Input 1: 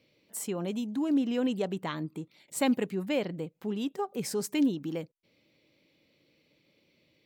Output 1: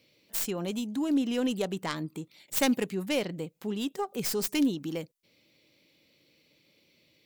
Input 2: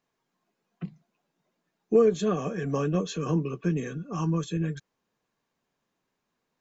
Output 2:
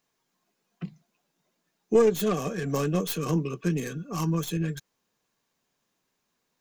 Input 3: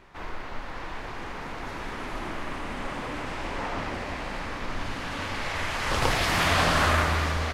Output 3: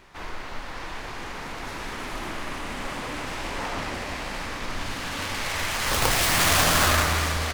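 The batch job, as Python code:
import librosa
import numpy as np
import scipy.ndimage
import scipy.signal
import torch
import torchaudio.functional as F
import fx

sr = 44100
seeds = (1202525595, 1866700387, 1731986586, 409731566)

y = fx.tracing_dist(x, sr, depth_ms=0.15)
y = fx.high_shelf(y, sr, hz=3500.0, db=10.0)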